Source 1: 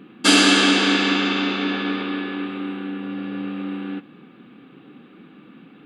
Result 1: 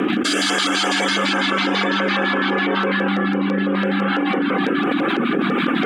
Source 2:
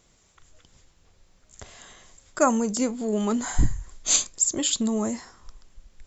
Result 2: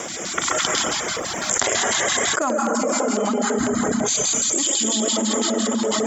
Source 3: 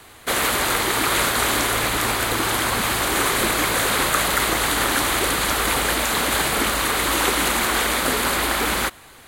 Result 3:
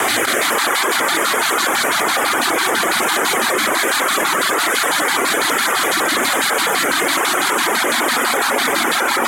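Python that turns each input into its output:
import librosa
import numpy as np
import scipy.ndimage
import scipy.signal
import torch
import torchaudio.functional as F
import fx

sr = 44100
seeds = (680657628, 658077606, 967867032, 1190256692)

p1 = fx.peak_eq(x, sr, hz=2700.0, db=-6.5, octaves=0.2)
p2 = fx.echo_multitap(p1, sr, ms=(55, 101, 131, 217), db=(-8.5, -7.0, -4.5, -10.0))
p3 = 10.0 ** (-12.5 / 20.0) * (np.abs((p2 / 10.0 ** (-12.5 / 20.0) + 3.0) % 4.0 - 2.0) - 1.0)
p4 = p2 + (p3 * librosa.db_to_amplitude(-11.5))
p5 = fx.rotary(p4, sr, hz=1.2)
p6 = fx.rev_plate(p5, sr, seeds[0], rt60_s=3.1, hf_ratio=0.7, predelay_ms=120, drr_db=-1.0)
p7 = fx.filter_lfo_notch(p6, sr, shape='square', hz=6.0, low_hz=480.0, high_hz=4200.0, q=1.3)
p8 = fx.rider(p7, sr, range_db=10, speed_s=0.5)
p9 = scipy.signal.sosfilt(scipy.signal.butter(2, 350.0, 'highpass', fs=sr, output='sos'), p8)
p10 = fx.dereverb_blind(p9, sr, rt60_s=0.85)
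p11 = fx.high_shelf(p10, sr, hz=9900.0, db=-7.5)
y = fx.env_flatten(p11, sr, amount_pct=100)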